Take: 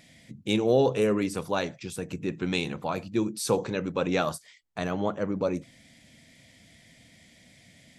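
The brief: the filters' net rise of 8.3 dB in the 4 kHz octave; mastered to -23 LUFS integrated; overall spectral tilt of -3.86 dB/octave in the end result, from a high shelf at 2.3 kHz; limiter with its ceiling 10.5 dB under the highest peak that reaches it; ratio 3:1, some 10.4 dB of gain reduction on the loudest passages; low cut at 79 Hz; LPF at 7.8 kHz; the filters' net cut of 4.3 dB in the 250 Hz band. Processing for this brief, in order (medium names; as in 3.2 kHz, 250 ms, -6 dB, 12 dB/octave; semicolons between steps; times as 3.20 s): high-pass 79 Hz; low-pass 7.8 kHz; peaking EQ 250 Hz -6 dB; treble shelf 2.3 kHz +4.5 dB; peaking EQ 4 kHz +6 dB; compression 3:1, threshold -33 dBFS; trim +16 dB; peak limiter -10.5 dBFS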